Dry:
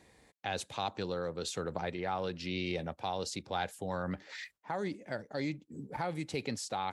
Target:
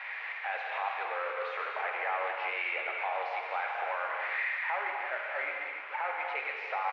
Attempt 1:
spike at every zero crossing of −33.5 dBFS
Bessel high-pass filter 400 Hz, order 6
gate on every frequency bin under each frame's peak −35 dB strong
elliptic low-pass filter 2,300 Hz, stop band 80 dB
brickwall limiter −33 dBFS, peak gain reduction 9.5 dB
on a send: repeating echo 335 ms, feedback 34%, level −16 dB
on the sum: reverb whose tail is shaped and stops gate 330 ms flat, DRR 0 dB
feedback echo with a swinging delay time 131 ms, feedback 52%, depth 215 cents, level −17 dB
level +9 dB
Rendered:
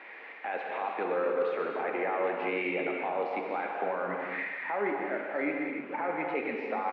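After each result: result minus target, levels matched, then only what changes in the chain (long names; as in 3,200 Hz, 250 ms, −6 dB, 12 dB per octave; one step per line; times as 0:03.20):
500 Hz band +7.0 dB; spike at every zero crossing: distortion −9 dB
change: Bessel high-pass filter 1,000 Hz, order 6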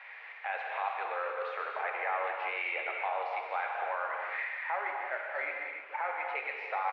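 spike at every zero crossing: distortion −9 dB
change: spike at every zero crossing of −24.5 dBFS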